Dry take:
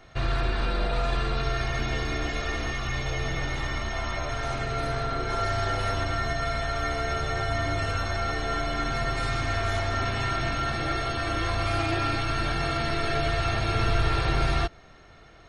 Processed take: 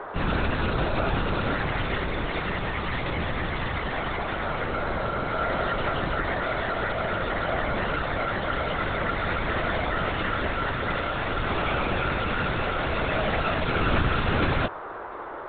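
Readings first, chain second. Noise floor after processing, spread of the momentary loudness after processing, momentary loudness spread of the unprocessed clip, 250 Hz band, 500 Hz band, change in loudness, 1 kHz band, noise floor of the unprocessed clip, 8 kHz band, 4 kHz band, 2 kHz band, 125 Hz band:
-36 dBFS, 4 LU, 4 LU, +3.5 dB, +3.0 dB, +1.0 dB, +2.0 dB, -50 dBFS, under -40 dB, -1.0 dB, +2.5 dB, -1.5 dB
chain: LPC vocoder at 8 kHz whisper; band noise 320–1400 Hz -37 dBFS

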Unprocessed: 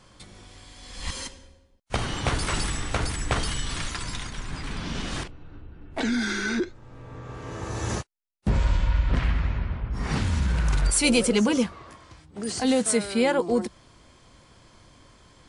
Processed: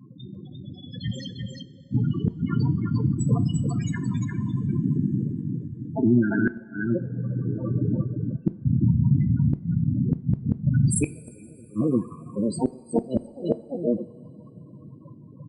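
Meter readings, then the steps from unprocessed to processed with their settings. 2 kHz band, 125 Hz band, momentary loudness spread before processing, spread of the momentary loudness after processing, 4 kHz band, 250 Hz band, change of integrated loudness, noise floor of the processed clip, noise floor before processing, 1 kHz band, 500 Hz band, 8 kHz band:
-7.5 dB, +7.0 dB, 16 LU, 18 LU, under -10 dB, +4.0 dB, +1.0 dB, -47 dBFS, -57 dBFS, -9.5 dB, -2.5 dB, -8.0 dB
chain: cycle switcher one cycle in 2, muted; HPF 130 Hz 24 dB/oct; tone controls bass +8 dB, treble -2 dB; in parallel at +1.5 dB: compressor 16:1, threshold -32 dBFS, peak gain reduction 16.5 dB; on the sum: loudest bins only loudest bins 8; on a send: echo 0.349 s -4.5 dB; on the sum: flipped gate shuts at -15 dBFS, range -32 dB; two-slope reverb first 0.38 s, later 4.3 s, from -18 dB, DRR 12.5 dB; gain +5 dB

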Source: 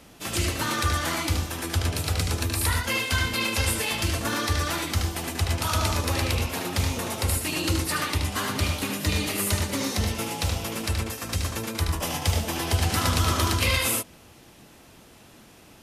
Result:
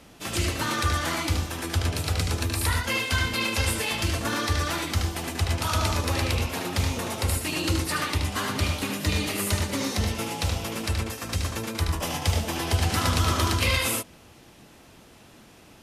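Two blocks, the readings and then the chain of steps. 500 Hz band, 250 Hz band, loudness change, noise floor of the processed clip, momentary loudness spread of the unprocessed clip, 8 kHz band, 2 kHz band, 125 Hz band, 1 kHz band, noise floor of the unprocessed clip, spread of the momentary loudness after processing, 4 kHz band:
0.0 dB, 0.0 dB, -0.5 dB, -52 dBFS, 5 LU, -2.0 dB, 0.0 dB, 0.0 dB, 0.0 dB, -51 dBFS, 6 LU, -0.5 dB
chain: high shelf 10000 Hz -5.5 dB

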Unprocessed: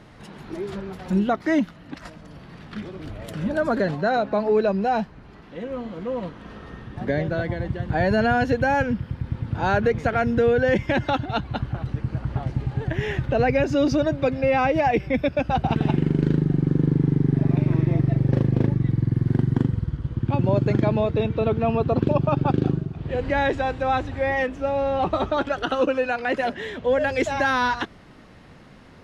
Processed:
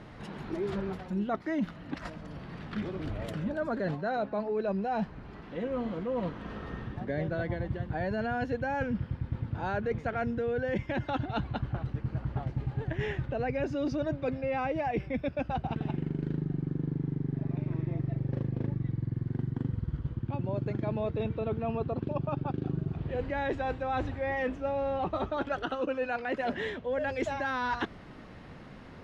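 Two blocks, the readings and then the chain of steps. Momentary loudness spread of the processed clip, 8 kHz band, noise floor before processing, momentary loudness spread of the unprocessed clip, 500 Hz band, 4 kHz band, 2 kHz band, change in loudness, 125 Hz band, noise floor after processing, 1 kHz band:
6 LU, n/a, -47 dBFS, 12 LU, -10.0 dB, -11.0 dB, -10.0 dB, -10.5 dB, -10.0 dB, -48 dBFS, -10.0 dB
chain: high shelf 5500 Hz -10.5 dB; reverse; compressor 10:1, threshold -28 dBFS, peak gain reduction 14 dB; reverse

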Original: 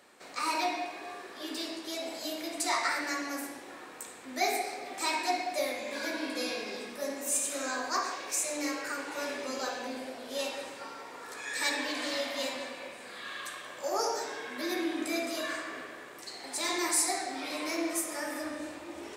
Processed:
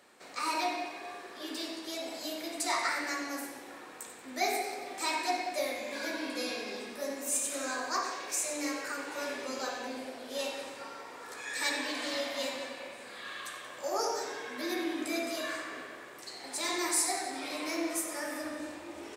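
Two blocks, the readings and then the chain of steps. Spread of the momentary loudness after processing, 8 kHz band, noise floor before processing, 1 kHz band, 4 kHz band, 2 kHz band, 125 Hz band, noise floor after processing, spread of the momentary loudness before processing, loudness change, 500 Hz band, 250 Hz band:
13 LU, -1.0 dB, -47 dBFS, -1.5 dB, -1.0 dB, -1.0 dB, n/a, -48 dBFS, 13 LU, -1.0 dB, -1.0 dB, -1.5 dB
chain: feedback echo 92 ms, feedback 56%, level -13 dB; gain -1.5 dB

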